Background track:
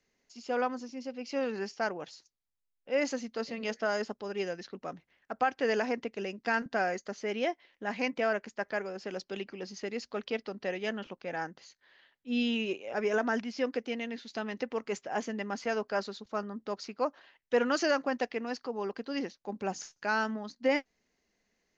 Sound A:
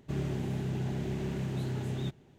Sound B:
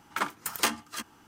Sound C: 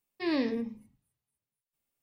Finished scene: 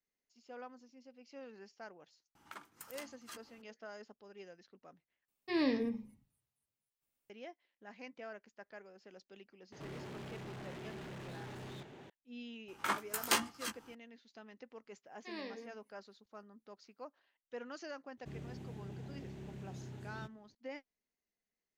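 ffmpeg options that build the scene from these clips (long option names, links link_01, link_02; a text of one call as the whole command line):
ffmpeg -i bed.wav -i cue0.wav -i cue1.wav -i cue2.wav -filter_complex "[2:a]asplit=2[link_01][link_02];[3:a]asplit=2[link_03][link_04];[1:a]asplit=2[link_05][link_06];[0:a]volume=-18.5dB[link_07];[link_01]acompressor=threshold=-33dB:ratio=12:attack=4.2:release=277:knee=1:detection=rms[link_08];[link_05]asplit=2[link_09][link_10];[link_10]highpass=frequency=720:poles=1,volume=39dB,asoftclip=type=tanh:threshold=-24dB[link_11];[link_09][link_11]amix=inputs=2:normalize=0,lowpass=frequency=2200:poles=1,volume=-6dB[link_12];[link_02]flanger=delay=15.5:depth=4.1:speed=2.3[link_13];[link_04]highpass=450[link_14];[link_07]asplit=2[link_15][link_16];[link_15]atrim=end=5.284[link_17];[link_03]atrim=end=2.02,asetpts=PTS-STARTPTS,volume=-3dB[link_18];[link_16]atrim=start=7.296[link_19];[link_08]atrim=end=1.27,asetpts=PTS-STARTPTS,volume=-10dB,afade=type=in:duration=0.004:curve=hsin,afade=type=out:start_time=1.266:duration=0.004:curve=hsin,adelay=2350[link_20];[link_12]atrim=end=2.38,asetpts=PTS-STARTPTS,volume=-17dB,afade=type=in:duration=0.004:curve=hsin,afade=type=out:start_time=2.376:duration=0.004:curve=hsin,adelay=9720[link_21];[link_13]atrim=end=1.27,asetpts=PTS-STARTPTS,volume=-1dB,afade=type=in:duration=0.004:curve=hsin,afade=type=out:start_time=1.266:duration=0.004:curve=hsin,adelay=559188S[link_22];[link_14]atrim=end=2.02,asetpts=PTS-STARTPTS,volume=-11dB,afade=type=in:duration=0.004:curve=hsin,afade=type=out:start_time=2.016:duration=0.004:curve=hsin,adelay=15050[link_23];[link_06]atrim=end=2.38,asetpts=PTS-STARTPTS,volume=-14dB,afade=type=in:duration=0.004:curve=hsin,afade=type=out:start_time=2.376:duration=0.004:curve=hsin,adelay=18170[link_24];[link_17][link_18]acrossfade=duration=0.004:curve1=hsin:curve2=hsin[link_25];[link_25][link_19]acrossfade=duration=0.004:curve1=hsin:curve2=hsin[link_26];[link_26][link_20][link_21][link_22][link_23][link_24]amix=inputs=6:normalize=0" out.wav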